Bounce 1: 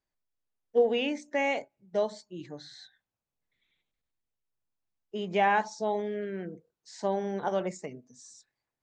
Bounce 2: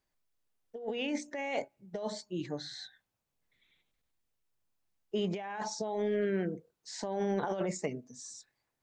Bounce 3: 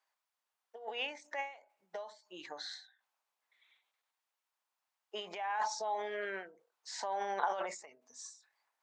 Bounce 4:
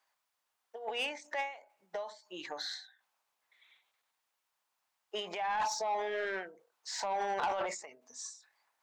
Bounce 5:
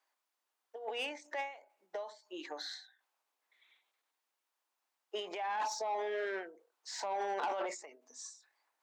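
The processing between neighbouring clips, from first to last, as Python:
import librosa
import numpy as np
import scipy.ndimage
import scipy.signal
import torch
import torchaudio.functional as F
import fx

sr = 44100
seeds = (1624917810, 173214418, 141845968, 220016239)

y1 = fx.over_compress(x, sr, threshold_db=-34.0, ratio=-1.0)
y2 = fx.highpass_res(y1, sr, hz=900.0, q=1.7)
y2 = fx.high_shelf(y2, sr, hz=6400.0, db=-5.5)
y2 = fx.end_taper(y2, sr, db_per_s=130.0)
y2 = y2 * 10.0 ** (1.5 / 20.0)
y3 = 10.0 ** (-32.0 / 20.0) * np.tanh(y2 / 10.0 ** (-32.0 / 20.0))
y3 = y3 * 10.0 ** (5.0 / 20.0)
y4 = fx.ladder_highpass(y3, sr, hz=250.0, resonance_pct=40)
y4 = y4 * 10.0 ** (4.5 / 20.0)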